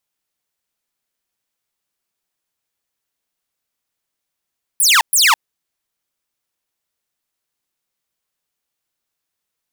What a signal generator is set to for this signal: burst of laser zaps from 12000 Hz, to 820 Hz, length 0.21 s saw, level -6 dB, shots 2, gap 0.12 s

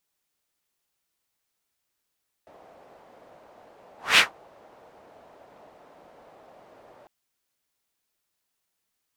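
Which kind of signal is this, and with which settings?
whoosh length 4.60 s, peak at 1.71, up 0.21 s, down 0.15 s, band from 650 Hz, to 2600 Hz, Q 2.1, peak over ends 37.5 dB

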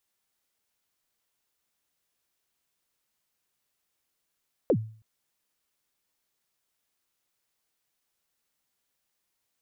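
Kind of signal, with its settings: kick drum length 0.32 s, from 600 Hz, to 110 Hz, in 69 ms, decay 0.45 s, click off, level -16 dB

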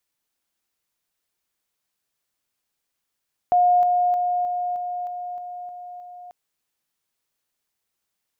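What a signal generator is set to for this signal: level ladder 715 Hz -13.5 dBFS, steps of -3 dB, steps 9, 0.31 s 0.00 s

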